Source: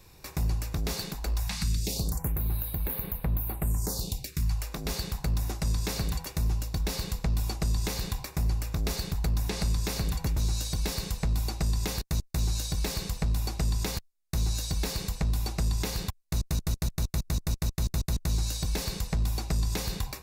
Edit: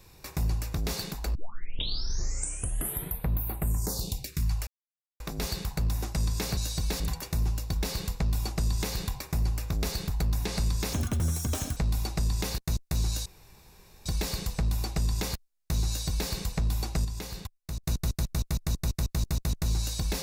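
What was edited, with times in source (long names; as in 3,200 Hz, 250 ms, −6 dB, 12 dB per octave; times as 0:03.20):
0:01.35: tape start 1.93 s
0:04.67: splice in silence 0.53 s
0:09.97–0:11.20: play speed 147%
0:12.69: splice in room tone 0.80 s
0:14.50–0:14.93: duplicate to 0:06.04
0:15.68–0:16.47: clip gain −6.5 dB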